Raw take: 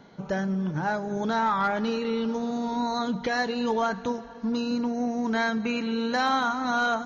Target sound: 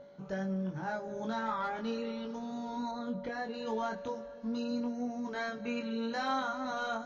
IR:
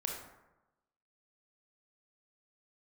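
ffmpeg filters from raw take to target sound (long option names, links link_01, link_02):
-filter_complex "[0:a]aeval=exprs='val(0)+0.0178*sin(2*PI*570*n/s)':channel_layout=same,flanger=delay=20:depth=2.9:speed=0.38,asettb=1/sr,asplit=3[link_01][link_02][link_03];[link_01]atrim=end=2.914[link_04];[link_02]atrim=start=2.91:end=3.54,asetpts=PTS-STARTPTS,afade=type=in:duration=0.004:curve=qsin,afade=type=out:start_time=0.626:duration=0.004:curve=qsin,highshelf=frequency=2300:gain=-11[link_05];[link_03]atrim=start=3.536[link_06];[link_04][link_05]acrossfade=duration=0.004:curve1=hsin:curve2=qsin[link_07];[link_07][link_06]acrossfade=duration=0.004:curve1=qsin:curve2=hsin,volume=-7dB"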